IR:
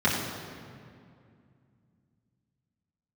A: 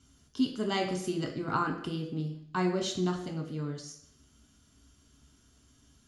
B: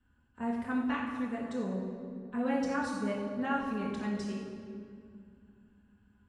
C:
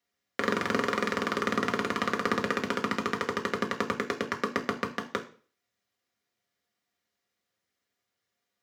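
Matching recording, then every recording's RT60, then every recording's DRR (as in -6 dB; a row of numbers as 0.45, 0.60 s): B; 0.70, 2.3, 0.40 s; 1.5, -8.5, 1.0 dB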